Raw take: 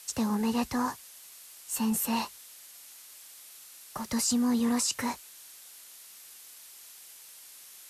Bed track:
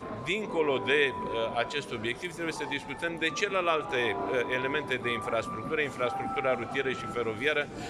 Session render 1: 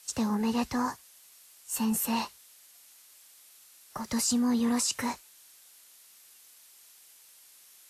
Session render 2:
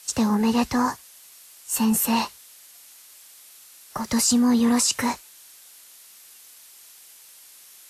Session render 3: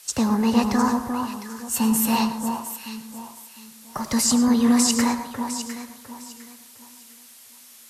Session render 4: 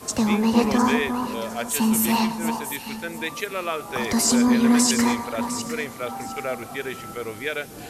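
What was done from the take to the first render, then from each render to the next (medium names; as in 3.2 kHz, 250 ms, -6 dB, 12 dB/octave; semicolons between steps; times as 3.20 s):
noise print and reduce 6 dB
trim +7.5 dB
echo whose repeats swap between lows and highs 353 ms, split 1.4 kHz, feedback 52%, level -4.5 dB; plate-style reverb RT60 0.59 s, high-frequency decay 0.4×, pre-delay 90 ms, DRR 10.5 dB
add bed track -0.5 dB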